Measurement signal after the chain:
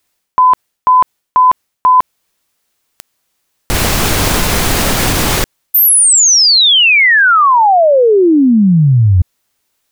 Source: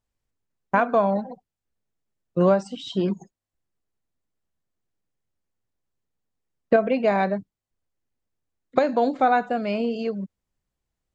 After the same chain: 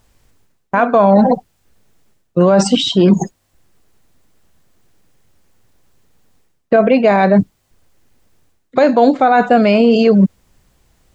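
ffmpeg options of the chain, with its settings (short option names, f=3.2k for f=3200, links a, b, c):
-af "areverse,acompressor=threshold=-33dB:ratio=8,areverse,alimiter=level_in=27.5dB:limit=-1dB:release=50:level=0:latency=1,volume=-1dB"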